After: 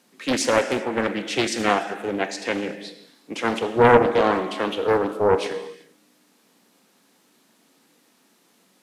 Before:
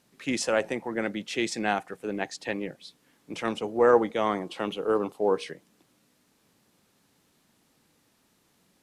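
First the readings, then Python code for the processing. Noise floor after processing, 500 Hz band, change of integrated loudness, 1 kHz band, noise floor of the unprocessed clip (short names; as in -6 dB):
-62 dBFS, +5.5 dB, +6.0 dB, +8.0 dB, -68 dBFS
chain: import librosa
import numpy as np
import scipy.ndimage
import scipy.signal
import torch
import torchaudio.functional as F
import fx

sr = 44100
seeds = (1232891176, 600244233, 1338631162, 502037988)

y = scipy.signal.sosfilt(scipy.signal.butter(4, 190.0, 'highpass', fs=sr, output='sos'), x)
y = fx.rev_gated(y, sr, seeds[0], gate_ms=420, shape='falling', drr_db=6.5)
y = fx.doppler_dist(y, sr, depth_ms=0.71)
y = y * 10.0 ** (6.0 / 20.0)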